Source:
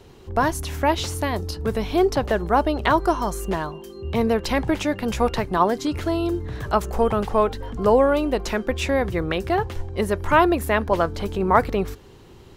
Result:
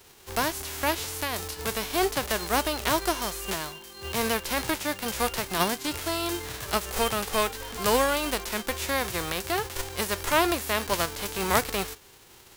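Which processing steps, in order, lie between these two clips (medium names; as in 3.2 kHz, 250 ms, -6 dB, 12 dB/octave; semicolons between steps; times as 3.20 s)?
formants flattened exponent 0.3; trim -6.5 dB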